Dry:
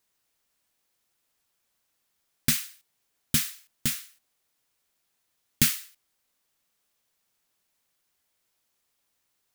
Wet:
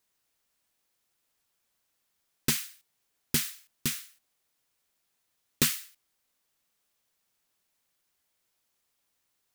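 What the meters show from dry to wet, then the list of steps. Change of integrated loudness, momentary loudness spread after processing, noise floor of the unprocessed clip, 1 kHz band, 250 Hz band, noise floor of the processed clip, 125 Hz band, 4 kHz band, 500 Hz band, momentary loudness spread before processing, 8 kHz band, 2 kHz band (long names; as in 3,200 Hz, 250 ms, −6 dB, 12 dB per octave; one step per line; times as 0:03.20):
−3.5 dB, 11 LU, −76 dBFS, +1.5 dB, −2.0 dB, −78 dBFS, −3.5 dB, −1.5 dB, +7.0 dB, 12 LU, −2.5 dB, −2.0 dB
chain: highs frequency-modulated by the lows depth 0.88 ms
level −1.5 dB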